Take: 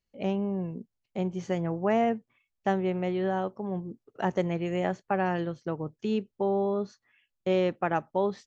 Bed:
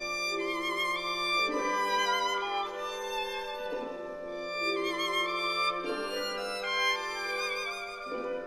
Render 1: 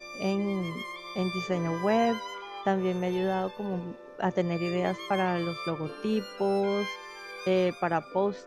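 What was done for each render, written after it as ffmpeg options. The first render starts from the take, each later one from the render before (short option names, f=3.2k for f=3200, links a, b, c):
-filter_complex "[1:a]volume=-8.5dB[a];[0:a][a]amix=inputs=2:normalize=0"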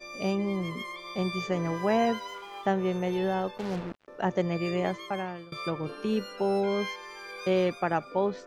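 -filter_complex "[0:a]asettb=1/sr,asplit=3[a][b][c];[a]atrim=end=1.634[d];[b]atrim=start=1.63:end=2.66,asetpts=PTS-STARTPTS,afade=t=in:d=0.004:c=qsin,afade=t=out:st=1.026:d=0.004:c=qsin,aeval=exprs='sgn(val(0))*max(abs(val(0))-0.002,0)':c=same[e];[c]atrim=start=2.656[f];[d][e]acrossfade=d=0.004:c1=hsin:c2=qsin[g];[g][f]acrossfade=d=0.004:c1=qsin:c2=hsin,asettb=1/sr,asplit=3[h][i][j];[h]atrim=end=3.584[k];[i]atrim=start=3.58:end=4.08,asetpts=PTS-STARTPTS,afade=t=in:d=0.004:c=qsin,afade=t=out:st=0.496:d=0.004:c=qsin,acrusher=bits=5:mix=0:aa=0.5[l];[j]atrim=start=4.076[m];[k][l]acrossfade=d=0.004:c1=hsin:c2=qsin[n];[n][m]acrossfade=d=0.004:c1=qsin:c2=hsin,asplit=2[o][p];[o]atrim=end=5.52,asetpts=PTS-STARTPTS,afade=t=out:st=4.81:d=0.71:silence=0.0749894[q];[p]atrim=start=5.52,asetpts=PTS-STARTPTS,afade=t=in:d=0.004:c=hsin:silence=0.0749894[r];[q][r]concat=n=2:v=0:a=1"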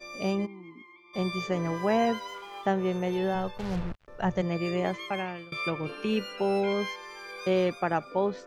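-filter_complex "[0:a]asplit=3[a][b][c];[a]afade=t=out:st=0.45:d=0.02[d];[b]asplit=3[e][f][g];[e]bandpass=f=300:t=q:w=8,volume=0dB[h];[f]bandpass=f=870:t=q:w=8,volume=-6dB[i];[g]bandpass=f=2.24k:t=q:w=8,volume=-9dB[j];[h][i][j]amix=inputs=3:normalize=0,afade=t=in:st=0.45:d=0.02,afade=t=out:st=1.13:d=0.02[k];[c]afade=t=in:st=1.13:d=0.02[l];[d][k][l]amix=inputs=3:normalize=0,asplit=3[m][n][o];[m]afade=t=out:st=3.34:d=0.02[p];[n]asubboost=boost=11.5:cutoff=91,afade=t=in:st=3.34:d=0.02,afade=t=out:st=4.41:d=0.02[q];[o]afade=t=in:st=4.41:d=0.02[r];[p][q][r]amix=inputs=3:normalize=0,asettb=1/sr,asplit=3[s][t][u];[s]atrim=end=4.934[v];[t]atrim=start=4.93:end=6.73,asetpts=PTS-STARTPTS,afade=t=in:d=0.004:c=qsin,afade=t=out:st=1.796:d=0.004:c=qsin,equalizer=f=2.5k:w=2.3:g=9[w];[u]atrim=start=6.726[x];[v][w]acrossfade=d=0.004:c1=hsin:c2=qsin[y];[y][x]acrossfade=d=0.004:c1=qsin:c2=hsin"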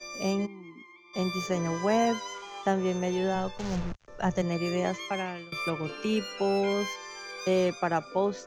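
-filter_complex "[0:a]lowpass=f=6.5k:t=q:w=4,acrossover=split=100|500|1700[a][b][c][d];[d]asoftclip=type=tanh:threshold=-32.5dB[e];[a][b][c][e]amix=inputs=4:normalize=0"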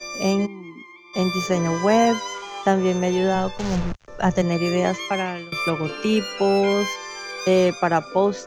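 -af "volume=8dB"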